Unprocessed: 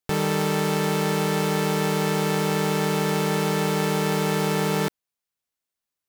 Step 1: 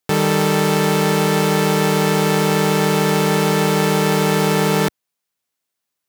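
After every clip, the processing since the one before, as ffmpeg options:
-af "highpass=100,volume=2.24"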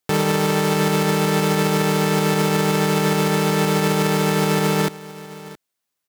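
-af "alimiter=limit=0.376:level=0:latency=1:release=53,aecho=1:1:669:0.133"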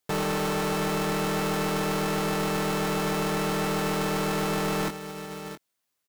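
-filter_complex "[0:a]asplit=2[s0][s1];[s1]adelay=22,volume=0.355[s2];[s0][s2]amix=inputs=2:normalize=0,aeval=exprs='(tanh(17.8*val(0)+0.25)-tanh(0.25))/17.8':c=same"

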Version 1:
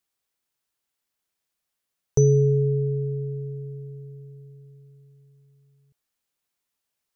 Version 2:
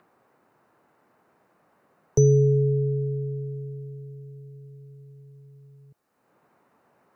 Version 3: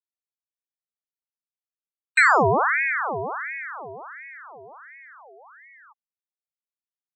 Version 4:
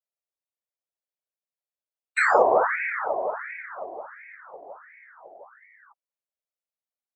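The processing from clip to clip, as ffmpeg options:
-filter_complex "[0:a]bandreject=f=3300:w=12,acrossover=split=110|1400[s0][s1][s2];[s1]acompressor=mode=upward:threshold=0.01:ratio=2.5[s3];[s0][s3][s2]amix=inputs=3:normalize=0"
-af "afftfilt=real='re*gte(hypot(re,im),0.0141)':imag='im*gte(hypot(re,im),0.0141)':win_size=1024:overlap=0.75,aeval=exprs='val(0)*sin(2*PI*1300*n/s+1300*0.6/1.4*sin(2*PI*1.4*n/s))':c=same,volume=1.5"
-af "highpass=f=570:t=q:w=4.9,afftfilt=real='hypot(re,im)*cos(2*PI*random(0))':imag='hypot(re,im)*sin(2*PI*random(1))':win_size=512:overlap=0.75"

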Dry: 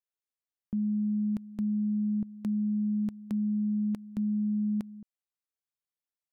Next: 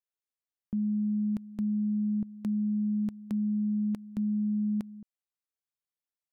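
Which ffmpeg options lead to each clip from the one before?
-af anull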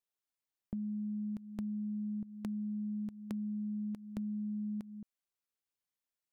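-af "acompressor=threshold=0.0141:ratio=6"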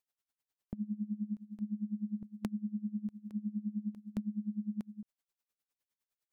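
-af "aeval=exprs='val(0)*pow(10,-21*(0.5-0.5*cos(2*PI*9.8*n/s))/20)':c=same,volume=1.88"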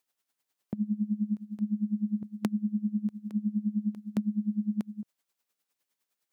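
-af "highpass=150,volume=2.66"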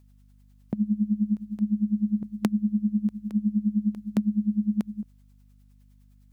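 -af "aeval=exprs='val(0)+0.001*(sin(2*PI*50*n/s)+sin(2*PI*2*50*n/s)/2+sin(2*PI*3*50*n/s)/3+sin(2*PI*4*50*n/s)/4+sin(2*PI*5*50*n/s)/5)':c=same,volume=1.78"

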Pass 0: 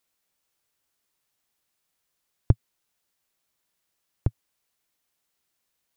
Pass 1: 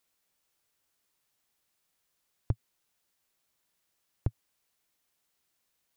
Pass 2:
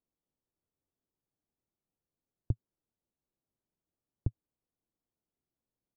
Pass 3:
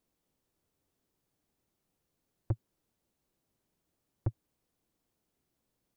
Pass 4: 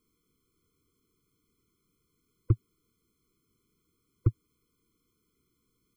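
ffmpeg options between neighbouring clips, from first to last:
-af "alimiter=limit=0.158:level=0:latency=1:release=75"
-af "firequalizer=gain_entry='entry(300,0);entry(570,-7);entry(2200,-29)':delay=0.05:min_phase=1,volume=0.891"
-af "asoftclip=type=tanh:threshold=0.0188,volume=3.35"
-af "afftfilt=real='re*eq(mod(floor(b*sr/1024/500),2),0)':imag='im*eq(mod(floor(b*sr/1024/500),2),0)':win_size=1024:overlap=0.75,volume=2.51"

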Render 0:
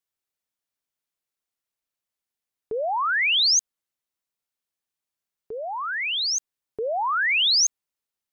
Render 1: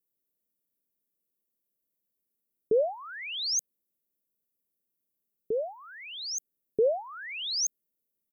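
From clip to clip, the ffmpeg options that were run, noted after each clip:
-af "firequalizer=gain_entry='entry(120,0);entry(180,9);entry(540,4);entry(910,-20);entry(13000,8)':delay=0.05:min_phase=1"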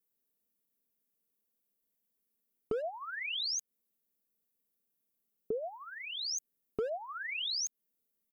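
-af "asoftclip=type=hard:threshold=0.0794,aecho=1:1:4.4:0.39,acompressor=threshold=0.0224:ratio=6"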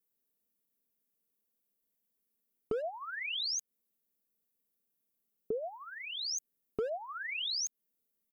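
-af anull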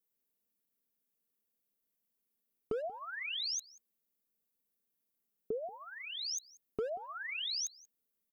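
-af "aecho=1:1:184:0.075,volume=0.794"

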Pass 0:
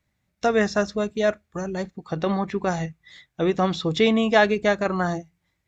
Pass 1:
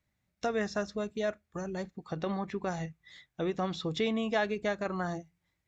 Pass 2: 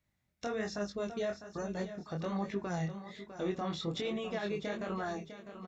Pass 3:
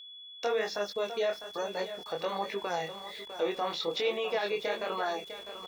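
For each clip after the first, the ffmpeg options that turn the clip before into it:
-af "acompressor=threshold=0.0316:ratio=1.5,volume=0.501"
-af "alimiter=level_in=1.41:limit=0.0631:level=0:latency=1:release=17,volume=0.708,aecho=1:1:652|1304|1956|2608:0.282|0.104|0.0386|0.0143,flanger=delay=19.5:depth=6:speed=1.2,volume=1.26"
-af "highpass=470,equalizer=f=480:t=q:w=4:g=8,equalizer=f=890:t=q:w=4:g=6,equalizer=f=2500:t=q:w=4:g=6,equalizer=f=4500:t=q:w=4:g=5,lowpass=f=6100:w=0.5412,lowpass=f=6100:w=1.3066,aeval=exprs='val(0)*gte(abs(val(0)),0.00178)':c=same,aeval=exprs='val(0)+0.00316*sin(2*PI*3400*n/s)':c=same,volume=1.68"

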